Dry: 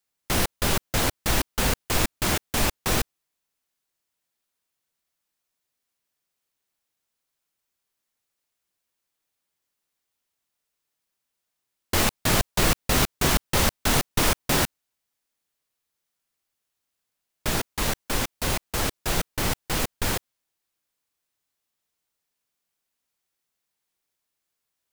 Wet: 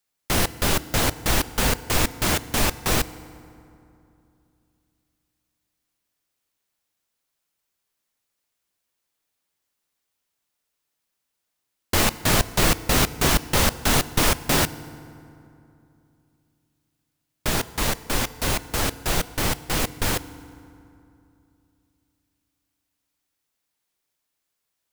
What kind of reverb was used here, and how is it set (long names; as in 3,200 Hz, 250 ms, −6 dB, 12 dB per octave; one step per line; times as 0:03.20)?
feedback delay network reverb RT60 2.7 s, low-frequency decay 1.25×, high-frequency decay 0.55×, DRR 15.5 dB
level +2 dB